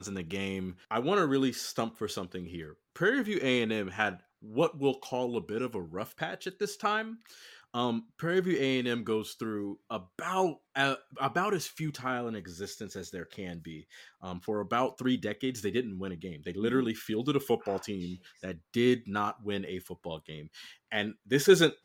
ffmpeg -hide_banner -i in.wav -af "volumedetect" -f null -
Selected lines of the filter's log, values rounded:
mean_volume: -32.0 dB
max_volume: -9.1 dB